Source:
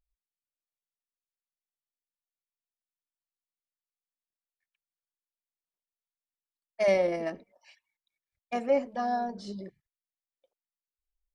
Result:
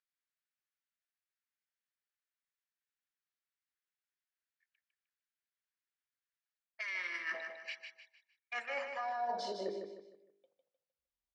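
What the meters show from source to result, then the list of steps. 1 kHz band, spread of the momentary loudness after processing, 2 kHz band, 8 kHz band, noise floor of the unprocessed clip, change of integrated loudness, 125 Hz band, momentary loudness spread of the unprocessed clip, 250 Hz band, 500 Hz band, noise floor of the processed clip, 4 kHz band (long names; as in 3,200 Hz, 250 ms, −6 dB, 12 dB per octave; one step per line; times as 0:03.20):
−6.5 dB, 10 LU, +1.5 dB, can't be measured, below −85 dBFS, −10.5 dB, below −15 dB, 17 LU, −17.5 dB, −14.5 dB, below −85 dBFS, −0.5 dB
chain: noise gate −58 dBFS, range −14 dB
hum removal 50.24 Hz, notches 21
high-pass filter sweep 1,600 Hz → 91 Hz, 0:08.71–0:10.98
brickwall limiter −28 dBFS, peak gain reduction 9 dB
reversed playback
downward compressor 6 to 1, threshold −50 dBFS, peak gain reduction 17 dB
reversed playback
gain on a spectral selection 0:06.81–0:07.34, 440–910 Hz −18 dB
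high-frequency loss of the air 91 metres
repeating echo 153 ms, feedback 37%, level −6.5 dB
level +13 dB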